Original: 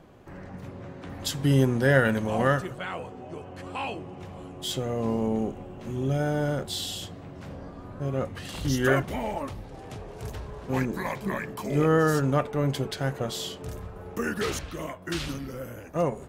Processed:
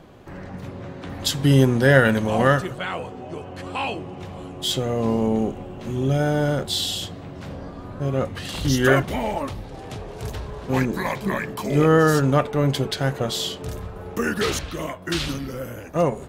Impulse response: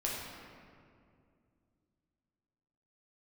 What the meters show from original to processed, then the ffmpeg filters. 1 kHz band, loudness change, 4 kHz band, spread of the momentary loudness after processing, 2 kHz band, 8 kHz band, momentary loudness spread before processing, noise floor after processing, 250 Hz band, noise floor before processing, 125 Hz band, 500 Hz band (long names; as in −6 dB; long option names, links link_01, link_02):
+5.5 dB, +5.5 dB, +8.0 dB, 19 LU, +6.0 dB, +6.0 dB, 19 LU, −38 dBFS, +5.5 dB, −43 dBFS, +5.5 dB, +5.5 dB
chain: -af "equalizer=frequency=3800:width=1.7:gain=3.5,volume=5.5dB"